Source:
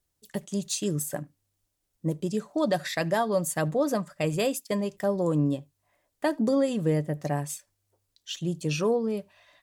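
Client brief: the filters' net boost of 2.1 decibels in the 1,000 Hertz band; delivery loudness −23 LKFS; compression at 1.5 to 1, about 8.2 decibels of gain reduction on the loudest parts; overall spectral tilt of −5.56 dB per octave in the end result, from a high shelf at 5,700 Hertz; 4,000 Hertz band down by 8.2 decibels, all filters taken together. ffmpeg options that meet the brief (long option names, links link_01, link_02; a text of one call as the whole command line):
ffmpeg -i in.wav -af "equalizer=frequency=1000:width_type=o:gain=3.5,equalizer=frequency=4000:width_type=o:gain=-8.5,highshelf=frequency=5700:gain=-7,acompressor=threshold=-43dB:ratio=1.5,volume=12.5dB" out.wav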